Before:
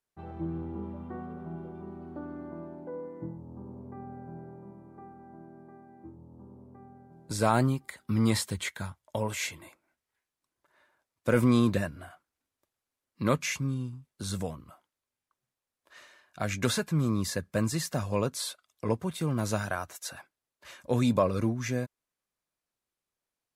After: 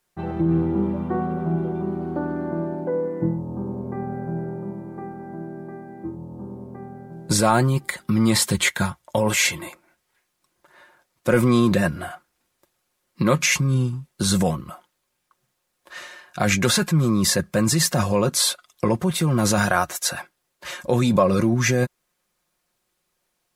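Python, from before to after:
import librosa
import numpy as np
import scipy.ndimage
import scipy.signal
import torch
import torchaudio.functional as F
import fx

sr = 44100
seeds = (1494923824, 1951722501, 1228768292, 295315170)

p1 = x + 0.46 * np.pad(x, (int(5.6 * sr / 1000.0), 0))[:len(x)]
p2 = fx.over_compress(p1, sr, threshold_db=-32.0, ratio=-0.5)
p3 = p1 + (p2 * 10.0 ** (0.5 / 20.0))
y = p3 * 10.0 ** (5.5 / 20.0)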